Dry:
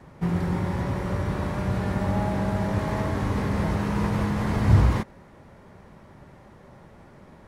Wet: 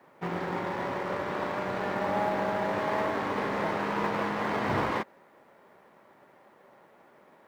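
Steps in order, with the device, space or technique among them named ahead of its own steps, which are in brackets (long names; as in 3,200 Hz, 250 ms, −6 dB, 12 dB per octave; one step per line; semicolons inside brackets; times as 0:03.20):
phone line with mismatched companding (band-pass filter 390–3,300 Hz; mu-law and A-law mismatch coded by A)
level +4 dB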